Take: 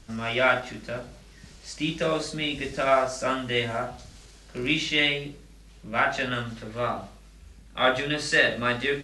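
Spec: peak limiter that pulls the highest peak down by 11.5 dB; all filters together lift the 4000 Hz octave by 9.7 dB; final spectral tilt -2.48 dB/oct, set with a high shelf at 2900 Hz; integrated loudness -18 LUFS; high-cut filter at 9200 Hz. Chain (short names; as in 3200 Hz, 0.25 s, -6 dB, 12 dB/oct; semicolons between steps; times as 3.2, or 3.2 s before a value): LPF 9200 Hz; high shelf 2900 Hz +6 dB; bell 4000 Hz +8.5 dB; gain +6 dB; limiter -6.5 dBFS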